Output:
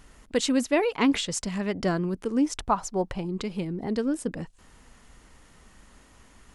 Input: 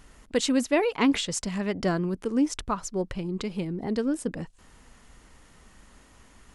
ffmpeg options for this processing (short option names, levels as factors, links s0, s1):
-filter_complex "[0:a]asettb=1/sr,asplit=3[s0][s1][s2];[s0]atrim=end=2.594[s3];[s1]atrim=start=2.59:end=3.25,asetpts=PTS-STARTPTS,afade=t=in:d=0.004:c=qsin,afade=t=out:st=0.656:d=0.004:c=qsin,equalizer=f=800:t=o:w=0.66:g=11[s4];[s2]atrim=start=3.246[s5];[s3][s4]acrossfade=d=0.004:c1=hsin:c2=qsin[s6];[s6][s5]acrossfade=d=0.004:c1=qsin:c2=hsin"